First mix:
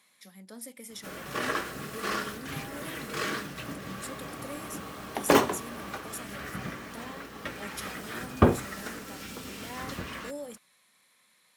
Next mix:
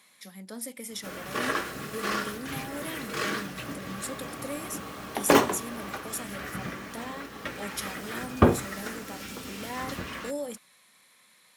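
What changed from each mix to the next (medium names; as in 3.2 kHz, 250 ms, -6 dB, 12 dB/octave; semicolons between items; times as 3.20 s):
speech +5.5 dB; background: send +6.5 dB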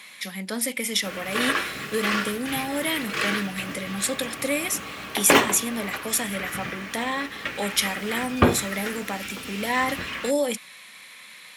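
speech +10.0 dB; master: add peaking EQ 2.5 kHz +9.5 dB 1.4 oct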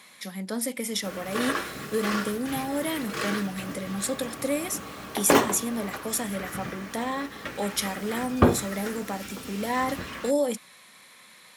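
speech: add treble shelf 6.3 kHz -5 dB; master: add peaking EQ 2.5 kHz -9.5 dB 1.4 oct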